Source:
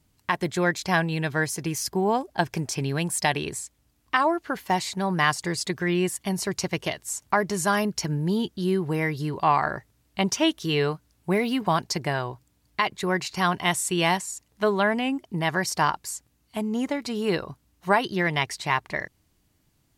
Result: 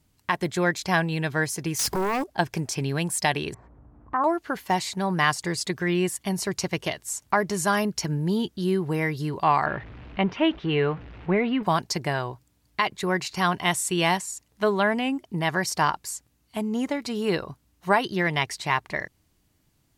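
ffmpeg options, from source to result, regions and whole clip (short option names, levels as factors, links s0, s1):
-filter_complex "[0:a]asettb=1/sr,asplit=3[s0][s1][s2];[s0]atrim=end=1.794[s3];[s1]atrim=start=1.79:end=2.24,asetpts=PTS-STARTPTS,afade=t=in:d=0.004:c=qsin,afade=t=out:st=0.446:d=0.004:c=qsin,acompressor=threshold=0.0355:ratio=4:attack=3.2:release=140:knee=1:detection=peak,acrusher=bits=7:mode=log:mix=0:aa=0.000001,aeval=exprs='0.0891*sin(PI/2*2.82*val(0)/0.0891)':c=same[s4];[s2]atrim=start=2.236[s5];[s3][s4]acrossfade=d=0.004:c1=hsin:c2=qsin[s6];[s6][s5]acrossfade=d=0.004:c1=qsin:c2=hsin,asettb=1/sr,asplit=3[s7][s8][s9];[s7]atrim=end=3.544[s10];[s8]atrim=start=3.54:end=4.24,asetpts=PTS-STARTPTS,afade=t=in:d=0.004:c=qsin,afade=t=out:st=0.696:d=0.004:c=qsin,lowpass=f=1200:w=0.5412,lowpass=f=1200:w=1.3066,acompressor=mode=upward:threshold=0.0178:ratio=2.5:attack=3.2:release=140:knee=2.83:detection=peak[s11];[s9]atrim=start=4.236[s12];[s10][s11]acrossfade=d=0.004:c1=hsin:c2=qsin[s13];[s13][s12]acrossfade=d=0.004:c1=qsin:c2=hsin,asettb=1/sr,asplit=3[s14][s15][s16];[s14]atrim=end=9.664[s17];[s15]atrim=start=9.66:end=11.63,asetpts=PTS-STARTPTS,afade=t=in:d=0.004:c=qsin,afade=t=out:st=1.966:d=0.004:c=qsin,aeval=exprs='val(0)+0.5*0.0168*sgn(val(0))':c=same,lowpass=f=2800:w=0.5412,lowpass=f=2800:w=1.3066[s18];[s16]atrim=start=11.626[s19];[s17][s18]acrossfade=d=0.004:c1=hsin:c2=qsin[s20];[s20][s19]acrossfade=d=0.004:c1=qsin:c2=hsin"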